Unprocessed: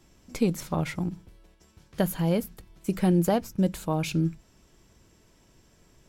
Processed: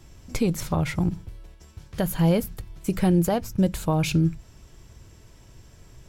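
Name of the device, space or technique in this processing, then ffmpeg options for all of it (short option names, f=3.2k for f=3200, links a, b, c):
car stereo with a boomy subwoofer: -af "lowshelf=f=150:t=q:w=1.5:g=6.5,alimiter=limit=-18.5dB:level=0:latency=1:release=257,volume=6dB"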